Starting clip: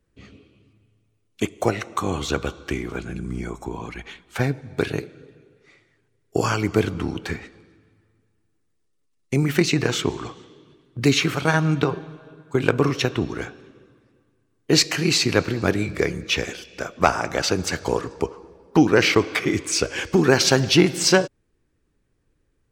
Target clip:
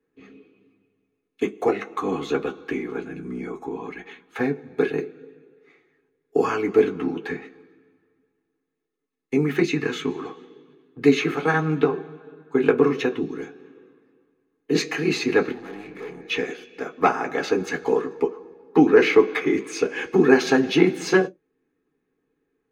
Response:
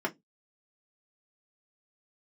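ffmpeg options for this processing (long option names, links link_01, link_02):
-filter_complex "[0:a]asettb=1/sr,asplit=3[link_01][link_02][link_03];[link_01]atrim=end=9.624[link_04];[link_02]atrim=start=9.62:end=10.15,asetpts=PTS-STARTPTS,afade=type=in:duration=0.004:curve=qsin,afade=type=out:start_time=0.526:duration=0.004:curve=qsin,equalizer=frequency=590:width_type=o:width=1.1:gain=-10[link_05];[link_03]atrim=start=10.146[link_06];[link_04][link_05]acrossfade=duration=0.004:curve1=hsin:curve2=qsin[link_07];[link_07][link_06]acrossfade=duration=0.004:curve1=qsin:curve2=hsin,asettb=1/sr,asplit=3[link_08][link_09][link_10];[link_08]atrim=end=13.134[link_11];[link_09]atrim=start=13.13:end=14.75,asetpts=PTS-STARTPTS,afade=type=in:duration=0.004:curve=qsin,afade=type=out:start_time=1.616:duration=0.004:curve=qsin,acrossover=split=370|3000[link_12][link_13][link_14];[link_13]acompressor=threshold=-43dB:ratio=2.5[link_15];[link_12][link_15][link_14]amix=inputs=3:normalize=0[link_16];[link_10]atrim=start=14.746[link_17];[link_11][link_16]acrossfade=duration=0.004:curve1=hsin:curve2=qsin[link_18];[link_18][link_17]acrossfade=duration=0.004:curve1=qsin:curve2=hsin,asettb=1/sr,asplit=3[link_19][link_20][link_21];[link_19]atrim=end=15.514[link_22];[link_20]atrim=start=15.51:end=16.3,asetpts=PTS-STARTPTS,afade=type=in:duration=0.004:curve=qsin,afade=type=out:start_time=0.786:duration=0.004:curve=qsin,aeval=exprs='(tanh(50.1*val(0)+0.6)-tanh(0.6))/50.1':channel_layout=same[link_23];[link_21]atrim=start=16.296[link_24];[link_22][link_23]acrossfade=duration=0.004:curve1=hsin:curve2=qsin[link_25];[link_25][link_24]acrossfade=duration=0.004:curve1=qsin:curve2=hsin[link_26];[1:a]atrim=start_sample=2205,asetrate=52920,aresample=44100[link_27];[link_26][link_27]afir=irnorm=-1:irlink=0,volume=-8dB"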